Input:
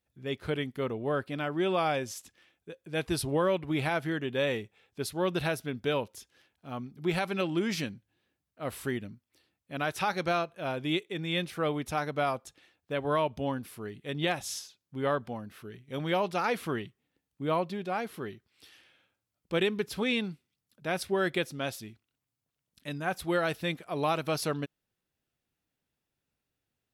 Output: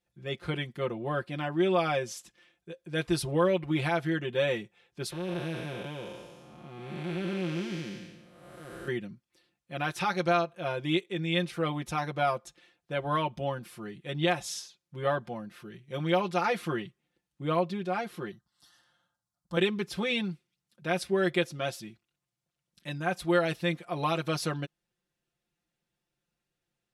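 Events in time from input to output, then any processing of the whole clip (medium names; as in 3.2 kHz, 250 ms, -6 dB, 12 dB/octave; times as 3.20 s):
5.12–8.88 s: spectral blur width 499 ms
18.31–19.57 s: static phaser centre 1 kHz, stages 4
whole clip: low-pass 10 kHz 12 dB/octave; comb 5.7 ms, depth 85%; trim -1.5 dB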